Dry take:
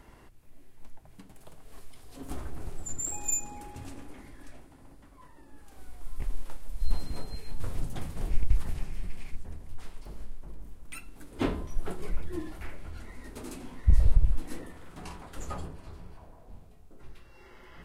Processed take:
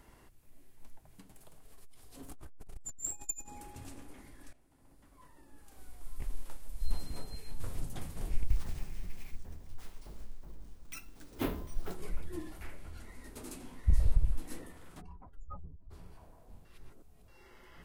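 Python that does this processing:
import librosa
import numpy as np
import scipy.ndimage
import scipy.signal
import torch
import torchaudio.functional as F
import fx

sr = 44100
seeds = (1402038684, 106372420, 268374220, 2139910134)

y = fx.transformer_sat(x, sr, knee_hz=110.0, at=(1.43, 3.48))
y = fx.resample_bad(y, sr, factor=3, down='none', up='hold', at=(8.48, 11.95))
y = fx.spec_expand(y, sr, power=2.2, at=(15.0, 15.9), fade=0.02)
y = fx.edit(y, sr, fx.fade_in_from(start_s=4.53, length_s=0.68, floor_db=-17.0),
    fx.reverse_span(start_s=16.65, length_s=0.63), tone=tone)
y = fx.high_shelf(y, sr, hz=5900.0, db=7.5)
y = y * librosa.db_to_amplitude(-5.5)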